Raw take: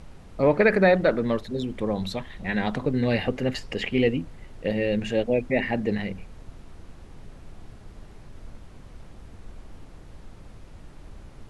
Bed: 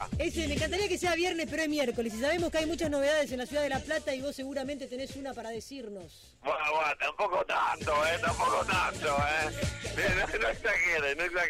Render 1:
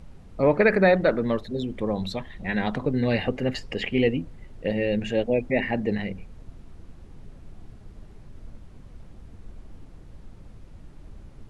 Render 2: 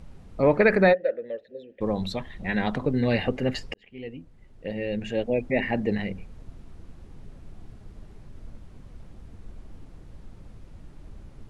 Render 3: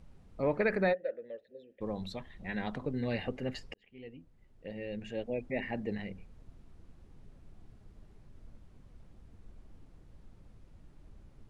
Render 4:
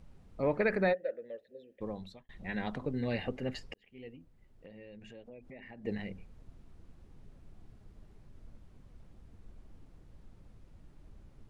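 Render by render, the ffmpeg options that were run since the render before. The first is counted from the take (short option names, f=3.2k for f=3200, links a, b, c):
-af "afftdn=nr=6:nf=-46"
-filter_complex "[0:a]asplit=3[a][b][c];[a]afade=t=out:st=0.92:d=0.02[d];[b]asplit=3[e][f][g];[e]bandpass=f=530:t=q:w=8,volume=0dB[h];[f]bandpass=f=1.84k:t=q:w=8,volume=-6dB[i];[g]bandpass=f=2.48k:t=q:w=8,volume=-9dB[j];[h][i][j]amix=inputs=3:normalize=0,afade=t=in:st=0.92:d=0.02,afade=t=out:st=1.8:d=0.02[k];[c]afade=t=in:st=1.8:d=0.02[l];[d][k][l]amix=inputs=3:normalize=0,asplit=2[m][n];[m]atrim=end=3.74,asetpts=PTS-STARTPTS,afade=t=out:st=3.736:d=0.004:c=hsin[o];[n]atrim=start=3.74,asetpts=PTS-STARTPTS,afade=t=in:d=2.01[p];[o][p]concat=n=2:v=0:a=1"
-af "volume=-10.5dB"
-filter_complex "[0:a]asettb=1/sr,asplit=3[a][b][c];[a]atrim=end=4.154[d];[b]atrim=start=4.15:end=5.85,asetpts=PTS-STARTPTS,afade=t=in:d=0.004:c=qsin,afade=t=out:st=1.696:d=0.004:c=qsin,acompressor=threshold=-48dB:ratio=5:attack=3.2:release=140:knee=1:detection=peak[e];[c]atrim=start=5.846[f];[d][e]acrossfade=d=0.004:c1=hsin:c2=qsin[g];[g][f]acrossfade=d=0.004:c1=qsin:c2=hsin,asplit=2[h][i];[h]atrim=end=2.29,asetpts=PTS-STARTPTS,afade=t=out:st=1.76:d=0.53[j];[i]atrim=start=2.29,asetpts=PTS-STARTPTS,afade=t=in:d=0.004:c=hsin[k];[j][k]concat=n=2:v=0:a=1"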